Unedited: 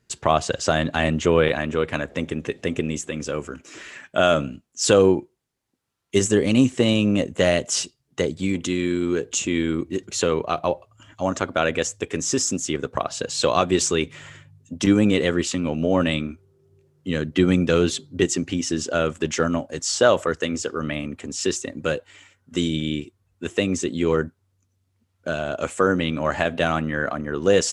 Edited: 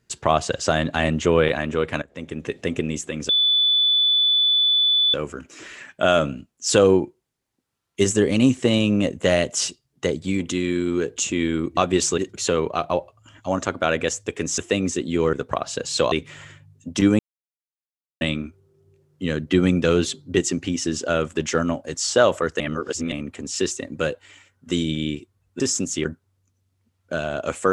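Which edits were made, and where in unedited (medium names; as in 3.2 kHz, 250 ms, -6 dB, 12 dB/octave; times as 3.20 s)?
2.02–2.54 s: fade in, from -22 dB
3.29 s: add tone 3.48 kHz -15 dBFS 1.85 s
12.32–12.77 s: swap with 23.45–24.20 s
13.56–13.97 s: move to 9.92 s
15.04–16.06 s: mute
20.45–20.97 s: reverse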